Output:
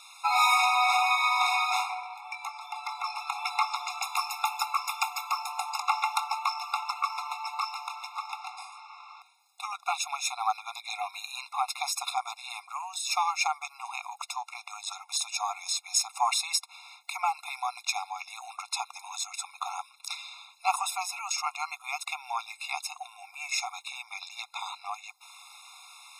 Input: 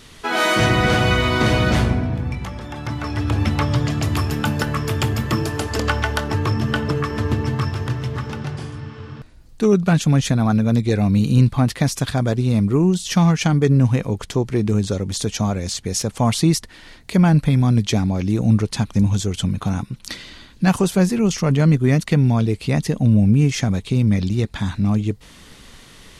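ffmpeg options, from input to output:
ffmpeg -i in.wav -filter_complex "[0:a]asettb=1/sr,asplit=3[link_01][link_02][link_03];[link_01]atrim=end=5.294[link_04];[link_02]atrim=start=5.29:end=5.92,asetpts=PTS-STARTPTS,afade=type=in:duration=0.004:curve=qsin,afade=type=out:start_time=0.626:duration=0.004:curve=qsin,tiltshelf=frequency=970:gain=3.5[link_05];[link_03]atrim=start=5.916[link_06];[link_04][link_05]acrossfade=duration=0.004:curve1=hsin:curve2=qsin[link_07];[link_07][link_06]acrossfade=duration=0.004:curve1=qsin:curve2=hsin,afftfilt=real='re*eq(mod(floor(b*sr/1024/700),2),1)':imag='im*eq(mod(floor(b*sr/1024/700),2),1)':win_size=1024:overlap=0.75" out.wav

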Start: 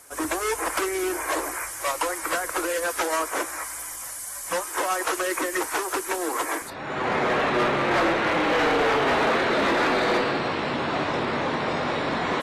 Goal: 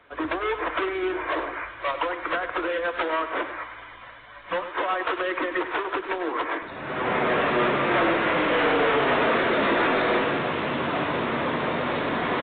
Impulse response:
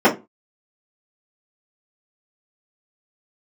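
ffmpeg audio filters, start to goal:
-filter_complex "[0:a]bandreject=frequency=810:width=12,asplit=2[link_01][link_02];[link_02]adelay=99.13,volume=-11dB,highshelf=frequency=4000:gain=-2.23[link_03];[link_01][link_03]amix=inputs=2:normalize=0,acrossover=split=110[link_04][link_05];[link_04]alimiter=level_in=19.5dB:limit=-24dB:level=0:latency=1,volume=-19.5dB[link_06];[link_06][link_05]amix=inputs=2:normalize=0" -ar 8000 -c:a pcm_mulaw

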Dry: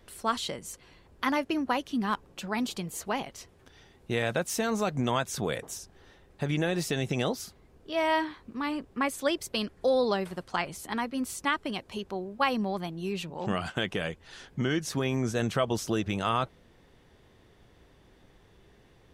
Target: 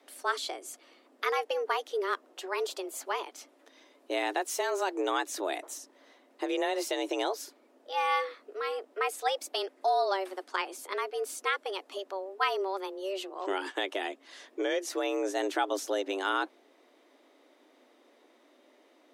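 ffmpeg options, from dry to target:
ffmpeg -i in.wav -af "highpass=87,afreqshift=190,volume=-2dB" out.wav

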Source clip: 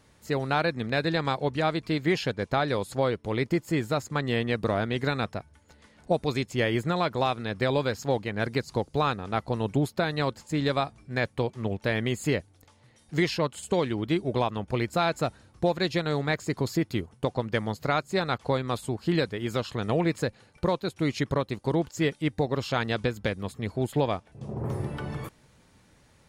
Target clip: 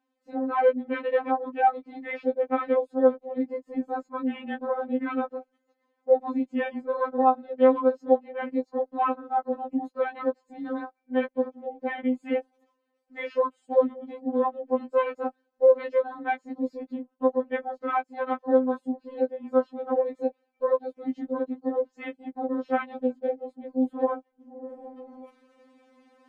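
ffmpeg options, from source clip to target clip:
ffmpeg -i in.wav -af "afwtdn=0.0282,areverse,acompressor=mode=upward:threshold=-40dB:ratio=2.5,areverse,bandpass=frequency=560:width_type=q:width=0.65:csg=0,afftfilt=real='re*3.46*eq(mod(b,12),0)':imag='im*3.46*eq(mod(b,12),0)':win_size=2048:overlap=0.75,volume=5.5dB" out.wav

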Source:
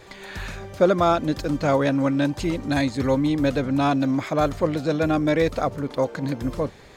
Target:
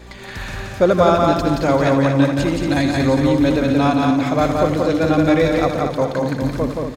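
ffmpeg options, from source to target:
ffmpeg -i in.wav -filter_complex "[0:a]asplit=2[link_01][link_02];[link_02]aecho=0:1:233|466|699|932:0.447|0.138|0.0429|0.0133[link_03];[link_01][link_03]amix=inputs=2:normalize=0,aeval=exprs='val(0)+0.00794*(sin(2*PI*60*n/s)+sin(2*PI*2*60*n/s)/2+sin(2*PI*3*60*n/s)/3+sin(2*PI*4*60*n/s)/4+sin(2*PI*5*60*n/s)/5)':channel_layout=same,asplit=2[link_04][link_05];[link_05]aecho=0:1:78.72|174.9:0.282|0.708[link_06];[link_04][link_06]amix=inputs=2:normalize=0,volume=3dB" out.wav

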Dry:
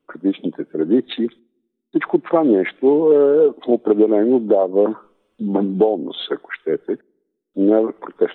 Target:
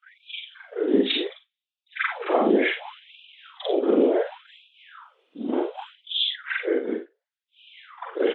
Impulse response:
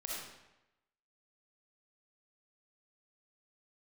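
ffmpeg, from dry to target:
-filter_complex "[0:a]afftfilt=real='re':imag='-im':win_size=4096:overlap=0.75,bandreject=frequency=60:width_type=h:width=6,bandreject=frequency=120:width_type=h:width=6,bandreject=frequency=180:width_type=h:width=6,asplit=2[link_01][link_02];[link_02]alimiter=limit=-16.5dB:level=0:latency=1:release=11,volume=1dB[link_03];[link_01][link_03]amix=inputs=2:normalize=0,crystalizer=i=3.5:c=0,acrossover=split=200|750[link_04][link_05][link_06];[link_04]asoftclip=type=tanh:threshold=-30dB[link_07];[link_07][link_05][link_06]amix=inputs=3:normalize=0,afftfilt=real='hypot(re,im)*cos(2*PI*random(0))':imag='hypot(re,im)*sin(2*PI*random(1))':win_size=512:overlap=0.75,lowpass=frequency=3100:width_type=q:width=1.7,aecho=1:1:42|57:0.376|0.316,afftfilt=real='re*gte(b*sr/1024,200*pow(2400/200,0.5+0.5*sin(2*PI*0.68*pts/sr)))':imag='im*gte(b*sr/1024,200*pow(2400/200,0.5+0.5*sin(2*PI*0.68*pts/sr)))':win_size=1024:overlap=0.75"

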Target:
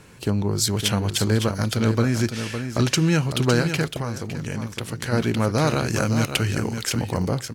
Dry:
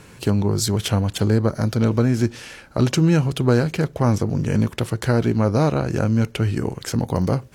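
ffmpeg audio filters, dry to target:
ffmpeg -i in.wav -filter_complex "[0:a]acrossover=split=1300[link_01][link_02];[link_02]dynaudnorm=framelen=110:gausssize=11:maxgain=9dB[link_03];[link_01][link_03]amix=inputs=2:normalize=0,asettb=1/sr,asplit=3[link_04][link_05][link_06];[link_04]atrim=end=5.674[link_07];[link_05]atrim=start=5.67:end=6.43,asetpts=PTS-STARTPTS,afade=type=in:duration=0.004:curve=qsin,afade=type=out:start_time=0.756:duration=0.004:curve=qsin,highshelf=frequency=4200:gain=8[link_08];[link_06]atrim=start=6.426[link_09];[link_07][link_08]acrossfade=duration=0.004:curve1=hsin:curve2=qsin[link_10];[link_10][link_09]acrossfade=duration=0.004:curve1=qsin:curve2=hsin,aecho=1:1:559:0.398,asplit=3[link_11][link_12][link_13];[link_11]afade=type=out:start_time=3.97:duration=0.02[link_14];[link_12]acompressor=threshold=-22dB:ratio=6,afade=type=in:start_time=3.97:duration=0.02,afade=type=out:start_time=5.11:duration=0.02[link_15];[link_13]afade=type=in:start_time=5.11:duration=0.02[link_16];[link_14][link_15][link_16]amix=inputs=3:normalize=0,volume=-3.5dB" out.wav

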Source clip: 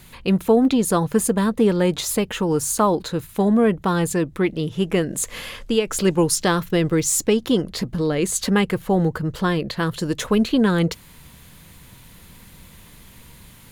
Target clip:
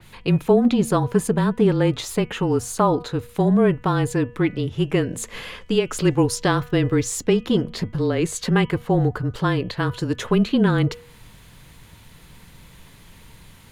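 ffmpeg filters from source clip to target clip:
ffmpeg -i in.wav -af "highshelf=frequency=9900:gain=-10.5,bandreject=frequency=251.3:width_type=h:width=4,bandreject=frequency=502.6:width_type=h:width=4,bandreject=frequency=753.9:width_type=h:width=4,bandreject=frequency=1005.2:width_type=h:width=4,bandreject=frequency=1256.5:width_type=h:width=4,bandreject=frequency=1507.8:width_type=h:width=4,bandreject=frequency=1759.1:width_type=h:width=4,bandreject=frequency=2010.4:width_type=h:width=4,bandreject=frequency=2261.7:width_type=h:width=4,bandreject=frequency=2513:width_type=h:width=4,bandreject=frequency=2764.3:width_type=h:width=4,bandreject=frequency=3015.6:width_type=h:width=4,bandreject=frequency=3266.9:width_type=h:width=4,afreqshift=-25,adynamicequalizer=threshold=0.00794:dfrequency=3800:dqfactor=0.7:tfrequency=3800:tqfactor=0.7:attack=5:release=100:ratio=0.375:range=2:mode=cutabove:tftype=highshelf" out.wav

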